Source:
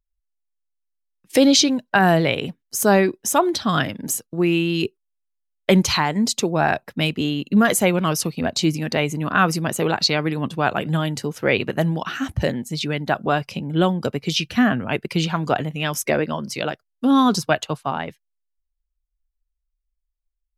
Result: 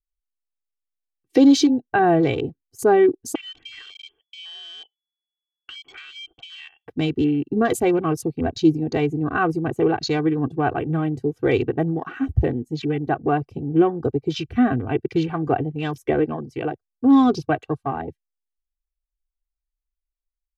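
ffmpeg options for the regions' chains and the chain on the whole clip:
ffmpeg -i in.wav -filter_complex "[0:a]asettb=1/sr,asplit=3[link_01][link_02][link_03];[link_01]atrim=end=3.354[link_04];[link_02]atrim=start=3.35:end=6.88,asetpts=PTS-STARTPTS,afade=type=in:duration=0.004:curve=qsin,afade=type=out:start_time=3.526:duration=0.004:curve=qsin,lowshelf=frequency=150:gain=10.5,lowpass=frequency=2900:width_type=q:width=0.5098,lowpass=frequency=2900:width_type=q:width=0.6013,lowpass=frequency=2900:width_type=q:width=0.9,lowpass=frequency=2900:width_type=q:width=2.563,afreqshift=-3400,acompressor=threshold=-27dB:ratio=8:attack=3.2:release=140:knee=1:detection=peak[link_05];[link_03]atrim=start=6.876[link_06];[link_04][link_05]acrossfade=duration=0.004:curve1=hsin:curve2=qsin[link_07];[link_07][link_06]acrossfade=duration=0.004:curve1=qsin:curve2=hsin,afwtdn=0.0282,tiltshelf=frequency=720:gain=8,aecho=1:1:2.6:0.86,volume=-4dB" out.wav

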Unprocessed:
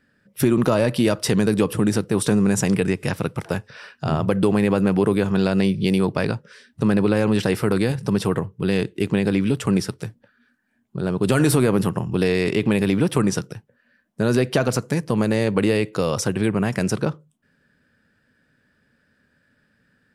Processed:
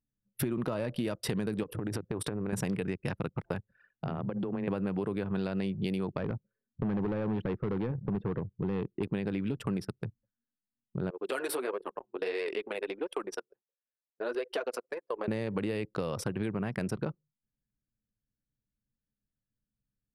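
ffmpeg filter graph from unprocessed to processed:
ffmpeg -i in.wav -filter_complex "[0:a]asettb=1/sr,asplit=3[link_01][link_02][link_03];[link_01]atrim=end=1.634[link_04];[link_02]atrim=start=1.63:end=2.53,asetpts=PTS-STARTPTS,afade=type=in:duration=0.004:curve=qsin,afade=type=out:start_time=0.896:duration=0.004:curve=qsin,equalizer=frequency=200:width=3.5:gain=-7.5,acompressor=threshold=-22dB:ratio=10:attack=3.2:release=140:knee=1:detection=peak[link_05];[link_03]atrim=start=2.526[link_06];[link_04][link_05]acrossfade=duration=0.004:curve1=hsin:curve2=qsin[link_07];[link_07][link_06]acrossfade=duration=0.004:curve1=qsin:curve2=hsin,asettb=1/sr,asplit=3[link_08][link_09][link_10];[link_08]atrim=end=3.904[link_11];[link_09]atrim=start=3.9:end=4.68,asetpts=PTS-STARTPTS,afade=type=in:duration=0.004:curve=qsin,afade=type=out:start_time=0.776:duration=0.004:curve=qsin,acompressor=threshold=-23dB:ratio=8:attack=3.2:release=140:knee=1:detection=peak,afreqshift=14[link_12];[link_10]atrim=start=4.676[link_13];[link_11][link_12]acrossfade=duration=0.004:curve1=hsin:curve2=qsin[link_14];[link_14][link_13]acrossfade=duration=0.004:curve1=qsin:curve2=hsin,asettb=1/sr,asplit=3[link_15][link_16][link_17];[link_15]atrim=end=6.184[link_18];[link_16]atrim=start=6.18:end=9.03,asetpts=PTS-STARTPTS,afade=type=in:duration=0.004:curve=qsin,afade=type=out:start_time=2.846:duration=0.004:curve=qsin,lowpass=frequency=1200:poles=1,asoftclip=type=hard:threshold=-16.5dB[link_19];[link_17]atrim=start=9.026[link_20];[link_18][link_19]acrossfade=duration=0.004:curve1=hsin:curve2=qsin[link_21];[link_21][link_20]acrossfade=duration=0.004:curve1=qsin:curve2=hsin,asettb=1/sr,asplit=3[link_22][link_23][link_24];[link_22]atrim=end=11.104[link_25];[link_23]atrim=start=11.1:end=15.28,asetpts=PTS-STARTPTS,afade=type=in:duration=0.004:curve=qsin,afade=type=out:start_time=4.176:duration=0.004:curve=qsin,highpass=frequency=390:width=0.5412,highpass=frequency=390:width=1.3066,flanger=delay=1.8:depth=6.7:regen=-5:speed=1.5:shape=sinusoidal[link_26];[link_24]atrim=start=15.276[link_27];[link_25][link_26]acrossfade=duration=0.004:curve1=hsin:curve2=qsin[link_28];[link_28][link_27]acrossfade=duration=0.004:curve1=qsin:curve2=hsin,anlmdn=63.1,equalizer=frequency=6700:width=1.8:gain=-10,acompressor=threshold=-24dB:ratio=6,volume=-5dB" out.wav

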